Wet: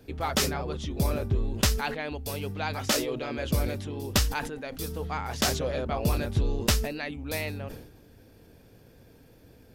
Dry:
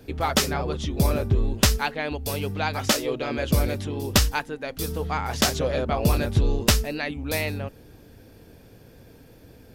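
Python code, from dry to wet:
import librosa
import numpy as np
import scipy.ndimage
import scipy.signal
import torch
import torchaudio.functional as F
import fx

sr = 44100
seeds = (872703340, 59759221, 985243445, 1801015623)

y = fx.sustainer(x, sr, db_per_s=68.0)
y = y * 10.0 ** (-5.5 / 20.0)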